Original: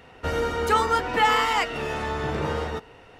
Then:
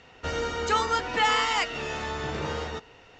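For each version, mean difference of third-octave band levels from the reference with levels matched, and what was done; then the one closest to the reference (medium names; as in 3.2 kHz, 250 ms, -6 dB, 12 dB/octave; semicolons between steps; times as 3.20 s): 3.5 dB: elliptic low-pass 7.1 kHz, stop band 40 dB; treble shelf 3.2 kHz +9.5 dB; trim -4 dB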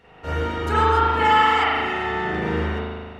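6.0 dB: treble shelf 9.5 kHz -5 dB; spring tank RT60 1.6 s, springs 38 ms, chirp 60 ms, DRR -9.5 dB; trim -6.5 dB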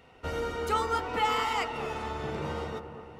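2.0 dB: band-stop 1.7 kHz, Q 7.8; feedback echo behind a low-pass 228 ms, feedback 61%, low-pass 1.4 kHz, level -9 dB; trim -7 dB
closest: third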